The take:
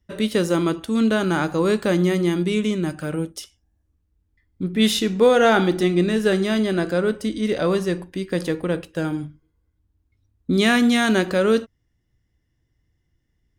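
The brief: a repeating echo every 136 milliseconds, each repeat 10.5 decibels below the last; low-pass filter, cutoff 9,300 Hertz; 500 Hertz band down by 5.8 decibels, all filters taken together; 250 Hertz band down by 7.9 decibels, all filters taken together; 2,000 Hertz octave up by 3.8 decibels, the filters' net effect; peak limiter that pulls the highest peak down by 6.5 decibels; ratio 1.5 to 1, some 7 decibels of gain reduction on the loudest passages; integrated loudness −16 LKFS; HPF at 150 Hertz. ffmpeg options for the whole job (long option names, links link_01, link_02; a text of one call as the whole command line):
ffmpeg -i in.wav -af "highpass=150,lowpass=9300,equalizer=frequency=250:width_type=o:gain=-8.5,equalizer=frequency=500:width_type=o:gain=-4.5,equalizer=frequency=2000:width_type=o:gain=5.5,acompressor=threshold=-32dB:ratio=1.5,alimiter=limit=-17.5dB:level=0:latency=1,aecho=1:1:136|272|408:0.299|0.0896|0.0269,volume=13.5dB" out.wav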